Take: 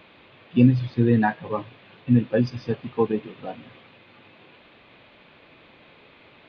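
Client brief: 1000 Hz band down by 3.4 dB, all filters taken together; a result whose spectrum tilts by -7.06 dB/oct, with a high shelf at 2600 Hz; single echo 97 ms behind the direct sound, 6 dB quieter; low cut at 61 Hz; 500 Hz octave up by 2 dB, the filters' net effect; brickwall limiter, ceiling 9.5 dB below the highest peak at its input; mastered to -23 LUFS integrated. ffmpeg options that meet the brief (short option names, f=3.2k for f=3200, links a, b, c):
-af "highpass=61,equalizer=f=500:t=o:g=3.5,equalizer=f=1k:t=o:g=-6,highshelf=f=2.6k:g=-4.5,alimiter=limit=-14.5dB:level=0:latency=1,aecho=1:1:97:0.501,volume=3.5dB"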